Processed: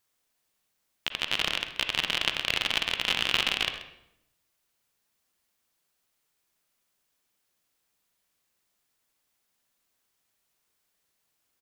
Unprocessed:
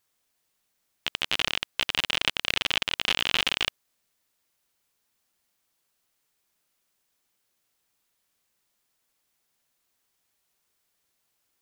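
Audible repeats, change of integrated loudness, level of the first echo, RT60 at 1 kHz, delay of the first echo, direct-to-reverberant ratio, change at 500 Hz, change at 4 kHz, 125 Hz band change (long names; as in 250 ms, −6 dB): 1, −1.0 dB, −15.5 dB, 0.75 s, 132 ms, 7.0 dB, −0.5 dB, −1.0 dB, −0.5 dB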